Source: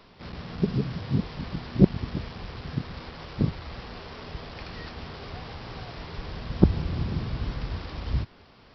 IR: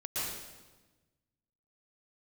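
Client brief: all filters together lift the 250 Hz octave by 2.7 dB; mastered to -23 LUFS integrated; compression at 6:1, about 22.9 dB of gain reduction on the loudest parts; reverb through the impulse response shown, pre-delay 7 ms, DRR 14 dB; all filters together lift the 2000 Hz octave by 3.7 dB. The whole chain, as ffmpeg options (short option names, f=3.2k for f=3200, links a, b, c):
-filter_complex "[0:a]equalizer=f=250:t=o:g=4,equalizer=f=2k:t=o:g=4.5,acompressor=threshold=-34dB:ratio=6,asplit=2[a][b];[1:a]atrim=start_sample=2205,adelay=7[c];[b][c]afir=irnorm=-1:irlink=0,volume=-18.5dB[d];[a][d]amix=inputs=2:normalize=0,volume=16.5dB"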